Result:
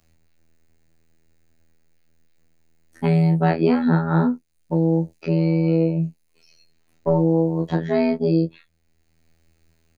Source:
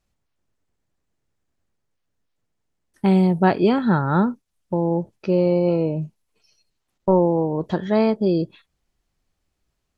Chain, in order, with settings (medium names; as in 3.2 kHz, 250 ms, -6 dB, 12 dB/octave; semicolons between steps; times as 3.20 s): robot voice 81.8 Hz; doubling 24 ms -3.5 dB; three bands compressed up and down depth 40%